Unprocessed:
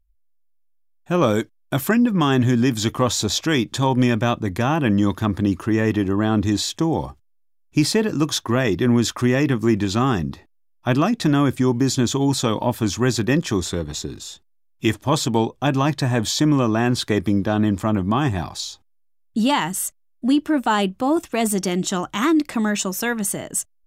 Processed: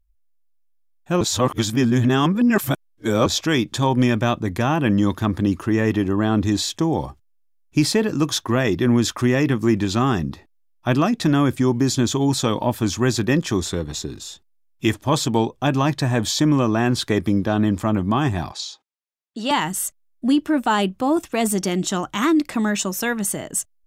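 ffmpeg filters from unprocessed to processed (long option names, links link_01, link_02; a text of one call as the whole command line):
ffmpeg -i in.wav -filter_complex "[0:a]asettb=1/sr,asplit=3[link_01][link_02][link_03];[link_01]atrim=end=18.524[link_04];[link_02]atrim=start=18.52:end=19.51,asetpts=PTS-STARTPTS,afade=type=in:duration=0.004:curve=qsin,afade=type=out:start_time=0.986:duration=0.004:curve=qsin,highpass=400,lowpass=6600[link_05];[link_03]atrim=start=19.506[link_06];[link_04][link_05]acrossfade=duration=0.004:curve1=hsin:curve2=qsin[link_07];[link_07][link_06]acrossfade=duration=0.004:curve1=qsin:curve2=hsin,asplit=3[link_08][link_09][link_10];[link_08]atrim=end=1.212[link_11];[link_09]atrim=start=1.208:end=3.262,asetpts=PTS-STARTPTS,areverse[link_12];[link_10]atrim=start=3.258[link_13];[link_11][link_12]acrossfade=duration=0.004:curve1=hsin:curve2=hsin[link_14];[link_14][link_13]acrossfade=duration=0.004:curve1=hsin:curve2=hsin" out.wav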